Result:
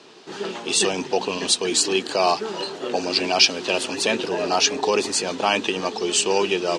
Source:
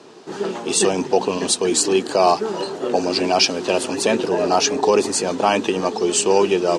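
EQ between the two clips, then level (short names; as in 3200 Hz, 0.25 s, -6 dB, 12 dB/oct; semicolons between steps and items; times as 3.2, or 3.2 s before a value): bell 3200 Hz +9.5 dB 2.1 oct; -6.0 dB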